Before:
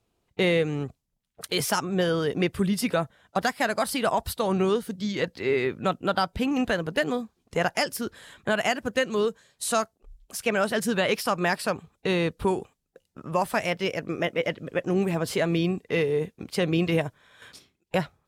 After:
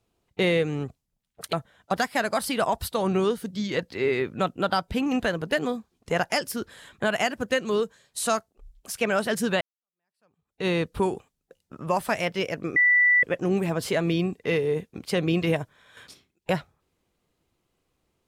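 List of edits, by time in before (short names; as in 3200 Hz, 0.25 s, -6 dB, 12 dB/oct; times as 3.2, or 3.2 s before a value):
1.53–2.98 cut
11.06–12.12 fade in exponential
14.21–14.68 bleep 1970 Hz -15.5 dBFS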